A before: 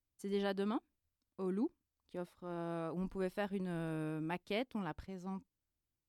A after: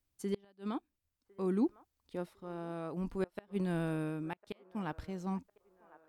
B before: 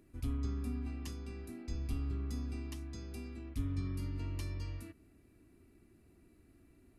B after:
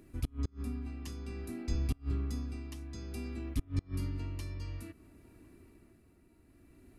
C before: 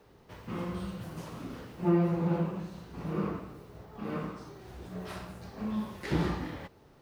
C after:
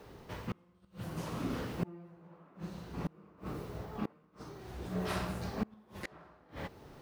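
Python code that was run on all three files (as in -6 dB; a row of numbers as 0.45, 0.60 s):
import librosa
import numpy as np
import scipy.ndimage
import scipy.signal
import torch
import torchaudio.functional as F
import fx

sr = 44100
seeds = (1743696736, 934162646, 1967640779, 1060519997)

y = fx.gate_flip(x, sr, shuts_db=-27.0, range_db=-31)
y = y * (1.0 - 0.57 / 2.0 + 0.57 / 2.0 * np.cos(2.0 * np.pi * 0.56 * (np.arange(len(y)) / sr)))
y = fx.echo_wet_bandpass(y, sr, ms=1054, feedback_pct=47, hz=890.0, wet_db=-18.5)
y = y * 10.0 ** (6.5 / 20.0)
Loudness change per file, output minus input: +2.0, +2.0, -7.0 LU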